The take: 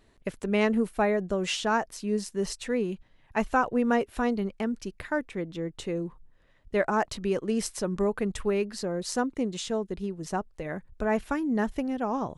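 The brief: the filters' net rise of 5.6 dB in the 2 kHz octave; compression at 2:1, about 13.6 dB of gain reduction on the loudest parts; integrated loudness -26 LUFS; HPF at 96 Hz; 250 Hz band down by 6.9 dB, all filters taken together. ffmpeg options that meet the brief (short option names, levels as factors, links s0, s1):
-af "highpass=96,equalizer=f=250:t=o:g=-8.5,equalizer=f=2000:t=o:g=7.5,acompressor=threshold=0.00631:ratio=2,volume=5.31"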